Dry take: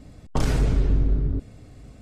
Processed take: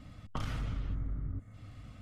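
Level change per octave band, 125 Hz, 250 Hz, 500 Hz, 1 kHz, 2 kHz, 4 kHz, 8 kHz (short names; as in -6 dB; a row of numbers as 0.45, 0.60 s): -13.5 dB, -15.5 dB, -20.0 dB, -10.5 dB, -10.5 dB, -10.5 dB, under -15 dB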